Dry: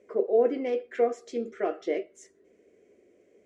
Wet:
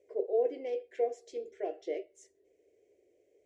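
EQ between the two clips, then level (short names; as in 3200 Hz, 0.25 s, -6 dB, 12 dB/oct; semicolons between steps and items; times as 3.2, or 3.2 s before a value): fixed phaser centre 520 Hz, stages 4; -6.0 dB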